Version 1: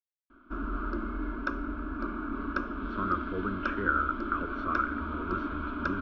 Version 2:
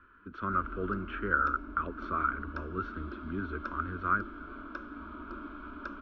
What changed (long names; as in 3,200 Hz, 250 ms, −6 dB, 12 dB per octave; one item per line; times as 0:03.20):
speech: entry −2.55 s
background −9.0 dB